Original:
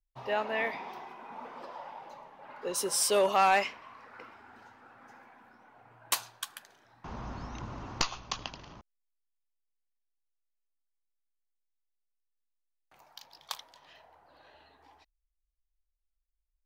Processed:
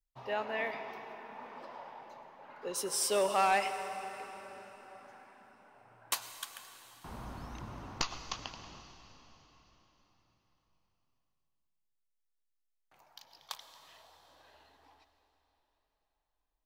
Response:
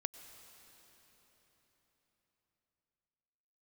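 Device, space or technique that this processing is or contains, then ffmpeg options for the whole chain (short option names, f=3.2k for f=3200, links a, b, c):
cathedral: -filter_complex "[1:a]atrim=start_sample=2205[a];[0:a][a]afir=irnorm=-1:irlink=0,volume=-2.5dB"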